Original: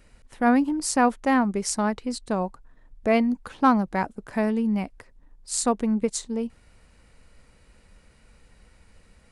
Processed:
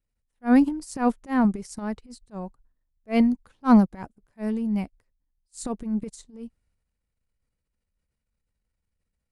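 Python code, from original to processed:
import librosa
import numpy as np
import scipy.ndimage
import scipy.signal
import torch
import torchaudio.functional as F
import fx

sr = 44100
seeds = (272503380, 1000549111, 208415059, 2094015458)

y = fx.high_shelf(x, sr, hz=5900.0, db=7.0)
y = fx.transient(y, sr, attack_db=-11, sustain_db=7)
y = fx.low_shelf(y, sr, hz=210.0, db=9.0)
y = fx.upward_expand(y, sr, threshold_db=-37.0, expansion=2.5)
y = y * librosa.db_to_amplitude(2.5)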